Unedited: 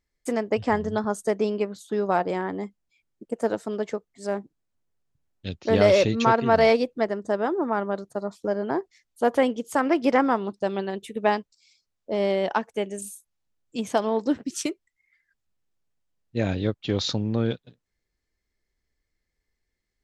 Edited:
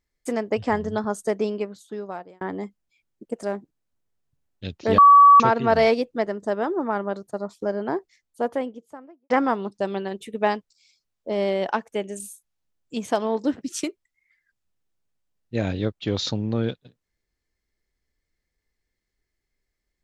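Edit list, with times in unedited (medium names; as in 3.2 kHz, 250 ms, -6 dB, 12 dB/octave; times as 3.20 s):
1.40–2.41 s: fade out
3.43–4.25 s: delete
5.80–6.22 s: bleep 1.14 kHz -7.5 dBFS
8.74–10.12 s: studio fade out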